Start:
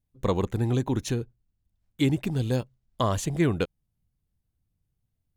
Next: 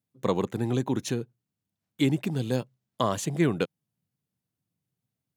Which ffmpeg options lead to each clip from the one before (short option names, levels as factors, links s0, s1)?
-af "highpass=f=130:w=0.5412,highpass=f=130:w=1.3066"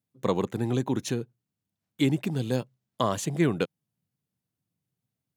-af anull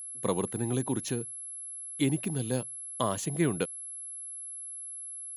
-af "aeval=exprs='val(0)+0.0178*sin(2*PI*11000*n/s)':c=same,volume=0.668"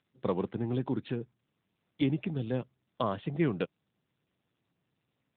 -af "volume=0.891" -ar 8000 -c:a libopencore_amrnb -b:a 10200